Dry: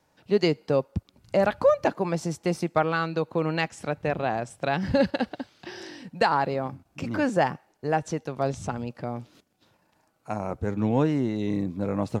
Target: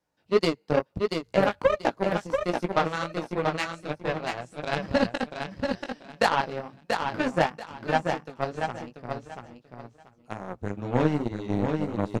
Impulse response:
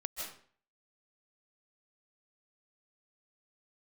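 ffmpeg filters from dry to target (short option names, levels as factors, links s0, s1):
-af "flanger=delay=15.5:depth=4.9:speed=2.2,aeval=exprs='0.282*(cos(1*acos(clip(val(0)/0.282,-1,1)))-cos(1*PI/2))+0.0316*(cos(7*acos(clip(val(0)/0.282,-1,1)))-cos(7*PI/2))':c=same,aecho=1:1:685|1370|2055:0.562|0.124|0.0272,volume=1.5"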